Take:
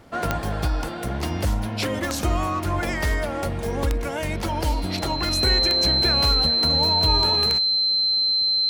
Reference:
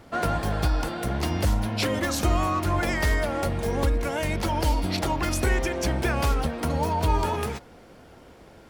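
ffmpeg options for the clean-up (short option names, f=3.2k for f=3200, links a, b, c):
-af "adeclick=t=4,bandreject=f=4.1k:w=30"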